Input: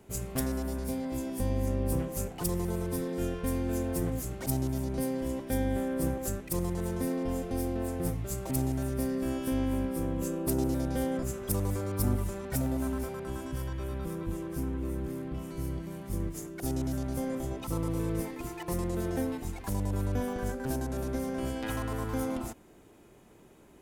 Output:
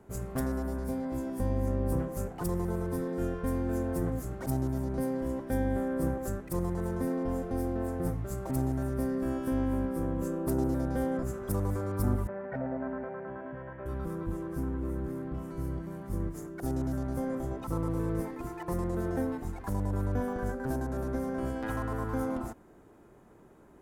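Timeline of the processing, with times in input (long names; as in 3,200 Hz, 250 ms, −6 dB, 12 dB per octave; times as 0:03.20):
0:12.27–0:13.86: loudspeaker in its box 190–2,300 Hz, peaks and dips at 320 Hz −10 dB, 600 Hz +6 dB, 1,200 Hz −6 dB, 1,800 Hz +4 dB
whole clip: high shelf with overshoot 2,000 Hz −8 dB, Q 1.5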